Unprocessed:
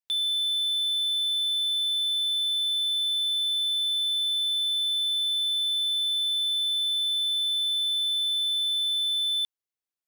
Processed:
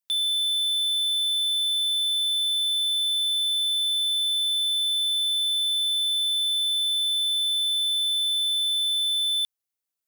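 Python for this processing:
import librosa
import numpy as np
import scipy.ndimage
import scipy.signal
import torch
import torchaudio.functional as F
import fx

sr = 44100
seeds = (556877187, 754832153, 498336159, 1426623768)

y = fx.high_shelf(x, sr, hz=6200.0, db=8.0)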